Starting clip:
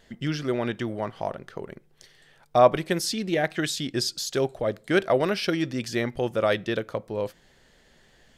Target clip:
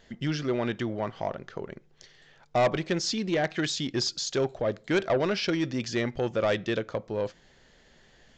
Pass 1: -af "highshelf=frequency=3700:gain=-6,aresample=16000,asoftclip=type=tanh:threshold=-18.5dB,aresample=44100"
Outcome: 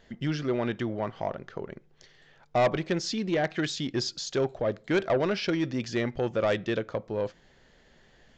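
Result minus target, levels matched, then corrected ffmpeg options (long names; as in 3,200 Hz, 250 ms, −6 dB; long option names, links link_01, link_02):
8,000 Hz band −4.0 dB
-af "aresample=16000,asoftclip=type=tanh:threshold=-18.5dB,aresample=44100"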